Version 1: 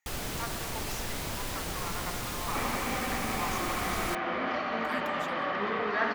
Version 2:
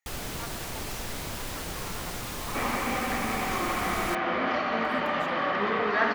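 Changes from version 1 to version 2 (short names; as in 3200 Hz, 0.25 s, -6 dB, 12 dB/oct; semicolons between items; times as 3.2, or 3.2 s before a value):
speech -4.5 dB; second sound +4.0 dB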